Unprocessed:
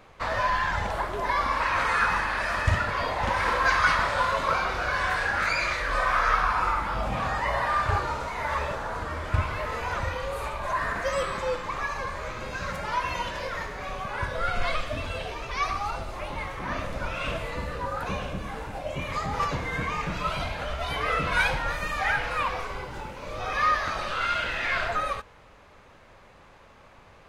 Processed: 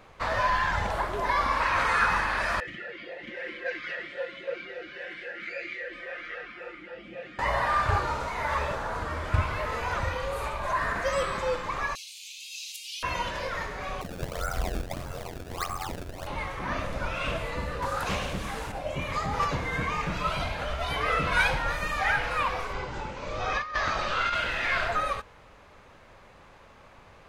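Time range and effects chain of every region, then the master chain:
2.6–7.39 comb 5.7 ms, depth 97% + vowel sweep e-i 3.7 Hz
11.95–13.03 steep high-pass 2600 Hz 72 dB/oct + tilt +3 dB/oct
14.01–16.27 bell 3100 Hz -14 dB 1 oct + decimation with a swept rate 25×, swing 160% 1.6 Hz + ring modulator 44 Hz
17.82–18.72 high shelf 3400 Hz +12 dB + Doppler distortion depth 0.39 ms
22.73–24.35 steep low-pass 7800 Hz + negative-ratio compressor -27 dBFS, ratio -0.5
whole clip: dry

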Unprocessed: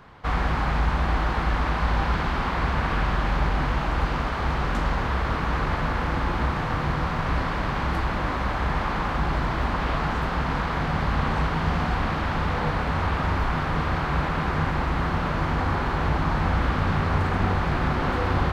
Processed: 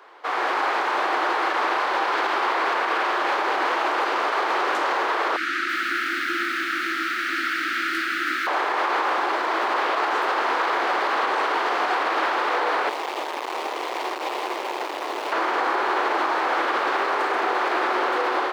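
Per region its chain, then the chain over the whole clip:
5.36–8.47 Chebyshev band-stop 340–1300 Hz, order 5 + lo-fi delay 0.327 s, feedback 35%, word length 8-bit, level -7.5 dB
12.89–15.32 Butterworth band-stop 1500 Hz, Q 1.5 + hard clip -30.5 dBFS + companded quantiser 6-bit
whole clip: elliptic high-pass 350 Hz, stop band 60 dB; AGC gain up to 6.5 dB; limiter -16.5 dBFS; gain +2.5 dB

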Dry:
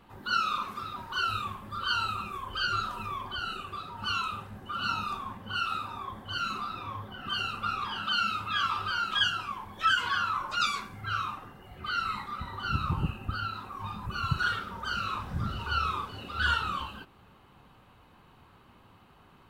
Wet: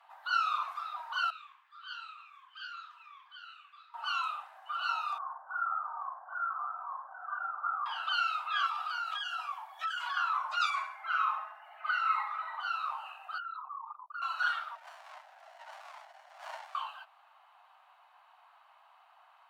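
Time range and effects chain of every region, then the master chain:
1.3–3.94 ladder high-pass 1300 Hz, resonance 20% + bell 11000 Hz -15 dB 0.84 oct + flange 1.4 Hz, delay 6.1 ms, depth 9.9 ms, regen -65%
5.18–7.86 Chebyshev low-pass 1500 Hz, order 5 + doubler 49 ms -8 dB
8.66–10.17 high shelf 6500 Hz +7 dB + notch comb 520 Hz + compressor, threshold -30 dBFS
10.7–12.61 resonant high shelf 2900 Hz -6.5 dB, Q 1.5 + comb 4.7 ms, depth 84% + flutter echo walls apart 11.8 m, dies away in 0.45 s
13.38–14.22 formant sharpening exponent 3 + compressor 2.5:1, threshold -36 dBFS + Doppler distortion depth 0.11 ms
14.75–16.75 HPF 520 Hz 24 dB/oct + running maximum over 33 samples
whole clip: steep high-pass 640 Hz 96 dB/oct; tilt -3 dB/oct

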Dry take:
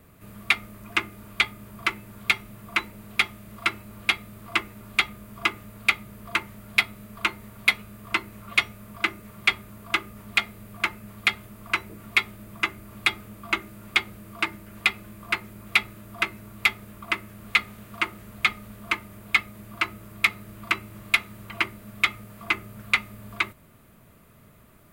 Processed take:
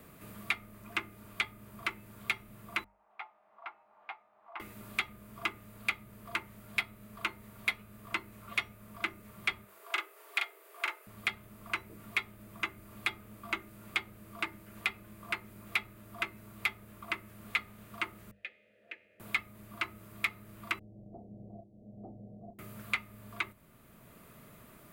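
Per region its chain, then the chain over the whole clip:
2.84–4.6 ladder band-pass 870 Hz, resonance 70% + air absorption 130 m + doubler 15 ms -11.5 dB
9.64–11.07 steep high-pass 360 Hz 72 dB/oct + doubler 40 ms -3 dB
18.31–19.2 vowel filter e + resonator 79 Hz, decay 0.98 s, mix 40%
20.79–22.59 rippled Chebyshev low-pass 770 Hz, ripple 3 dB + auto swell 0.434 s + doubler 30 ms -7.5 dB
whole clip: notches 50/100/150/200 Hz; dynamic EQ 5400 Hz, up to -4 dB, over -39 dBFS, Q 0.84; three-band squash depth 40%; gain -9 dB

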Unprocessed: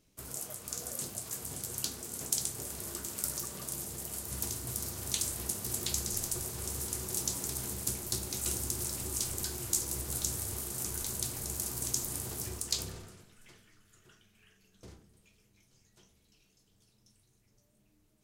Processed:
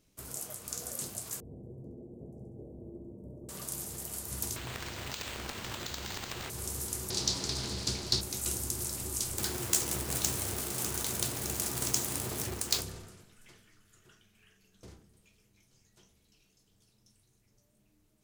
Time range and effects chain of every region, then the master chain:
1.4–3.49 inverse Chebyshev low-pass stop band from 1400 Hz, stop band 50 dB + flutter echo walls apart 11.6 m, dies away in 0.7 s
4.56–6.5 careless resampling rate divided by 4×, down none, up hold + compressor 5:1, threshold -35 dBFS
7.1–8.21 synth low-pass 4500 Hz, resonance Q 3.2 + sample leveller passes 1
9.38–12.81 half-waves squared off + HPF 120 Hz 6 dB/oct
whole clip: dry

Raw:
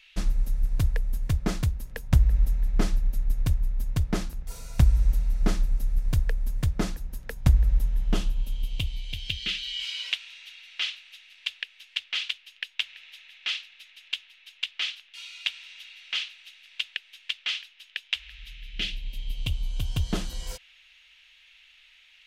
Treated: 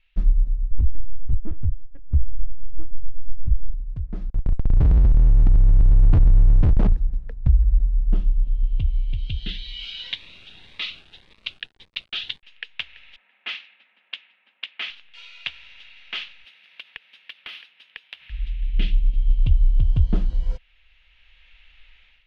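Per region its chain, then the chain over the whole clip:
0.71–3.74 tilt -2 dB/oct + LPC vocoder at 8 kHz pitch kept
4.3–6.93 Schmitt trigger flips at -31.5 dBFS + core saturation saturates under 65 Hz
9.18–12.43 bell 3800 Hz +8.5 dB 0.43 oct + sample gate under -45 dBFS + cascading phaser rising 1.8 Hz
13.16–14.9 low-pass opened by the level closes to 1200 Hz, open at -27 dBFS + rippled Chebyshev high-pass 190 Hz, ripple 3 dB + dynamic EQ 2200 Hz, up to +4 dB, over -46 dBFS, Q 1.4
16.44–18.3 HPF 180 Hz 24 dB/oct + compressor 4:1, threshold -33 dBFS + careless resampling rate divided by 3×, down filtered, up hold
whole clip: LPF 4100 Hz 12 dB/oct; tilt -3.5 dB/oct; AGC; gain -6 dB

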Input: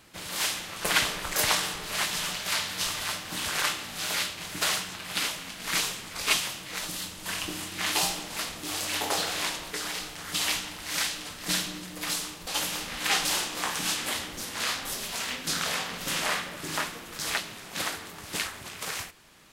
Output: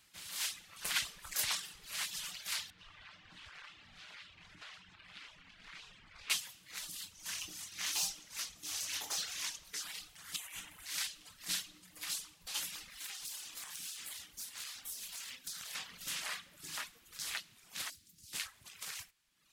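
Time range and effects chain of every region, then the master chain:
2.7–6.3 LPF 2700 Hz + compressor 2.5:1, threshold -39 dBFS + low shelf 77 Hz +9.5 dB
7.14–9.83 bell 6000 Hz +7 dB 0.4 oct + overloaded stage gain 19.5 dB
10.36–10.86 bell 4600 Hz -11.5 dB 0.66 oct + notch 5500 Hz, Q 22 + negative-ratio compressor -35 dBFS
12.9–15.75 high shelf 5100 Hz +7.5 dB + compressor 12:1, threshold -26 dBFS + tube stage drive 21 dB, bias 0.75
17.9–18.33 EQ curve 300 Hz 0 dB, 720 Hz -27 dB, 4800 Hz +1 dB + short-mantissa float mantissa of 2-bit + Doppler distortion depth 0.15 ms
whole clip: passive tone stack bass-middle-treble 5-5-5; reverb removal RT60 1 s; gain -1 dB

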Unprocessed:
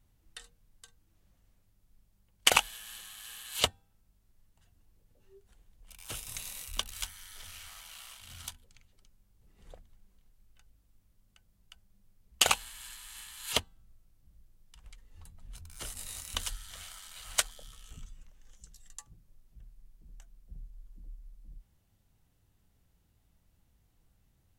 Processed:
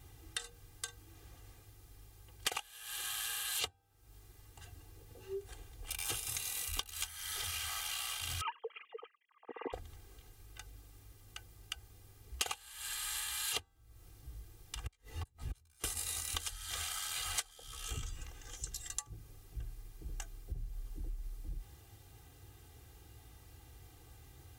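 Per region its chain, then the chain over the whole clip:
8.41–9.73 sine-wave speech + short-mantissa float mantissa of 2-bit + speaker cabinet 260–2300 Hz, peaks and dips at 270 Hz +4 dB, 470 Hz +9 dB, 690 Hz -3 dB, 1000 Hz +8 dB, 1500 Hz -9 dB, 2300 Hz -5 dB
14.84–15.84 doubler 16 ms -2 dB + flipped gate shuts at -41 dBFS, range -33 dB
whole clip: HPF 67 Hz 12 dB/oct; comb 2.5 ms, depth 98%; compressor 10:1, threshold -49 dBFS; gain +13 dB

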